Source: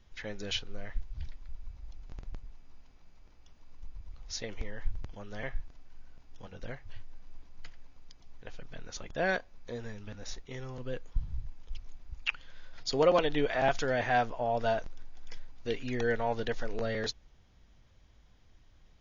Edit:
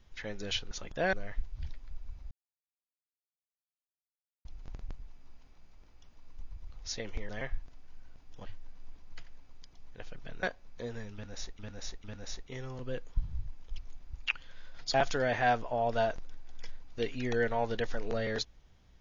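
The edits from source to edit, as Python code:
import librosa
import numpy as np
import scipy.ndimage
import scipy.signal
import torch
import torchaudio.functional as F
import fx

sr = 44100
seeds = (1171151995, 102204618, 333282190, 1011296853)

y = fx.edit(x, sr, fx.insert_silence(at_s=1.89, length_s=2.14),
    fx.cut(start_s=4.73, length_s=0.58),
    fx.cut(start_s=6.48, length_s=0.45),
    fx.move(start_s=8.9, length_s=0.42, to_s=0.71),
    fx.repeat(start_s=10.03, length_s=0.45, count=3),
    fx.cut(start_s=12.93, length_s=0.69), tone=tone)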